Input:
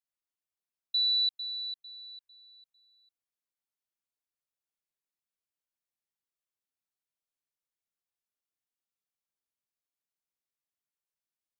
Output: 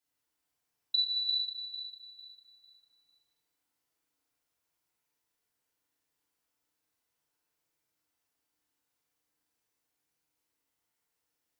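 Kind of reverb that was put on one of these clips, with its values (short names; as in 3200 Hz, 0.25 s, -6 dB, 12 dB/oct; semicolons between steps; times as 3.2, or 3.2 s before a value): FDN reverb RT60 2 s, low-frequency decay 0.85×, high-frequency decay 0.45×, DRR -7.5 dB; gain +3.5 dB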